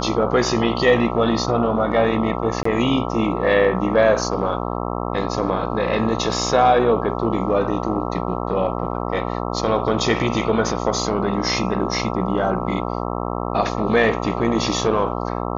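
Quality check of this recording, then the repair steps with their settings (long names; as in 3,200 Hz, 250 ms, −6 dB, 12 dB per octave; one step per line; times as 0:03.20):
mains buzz 60 Hz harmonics 22 −25 dBFS
0:02.63–0:02.65: drop-out 24 ms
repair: hum removal 60 Hz, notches 22
repair the gap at 0:02.63, 24 ms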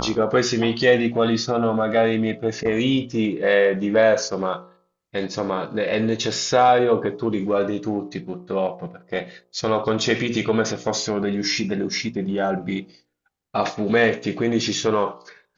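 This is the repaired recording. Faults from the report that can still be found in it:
none of them is left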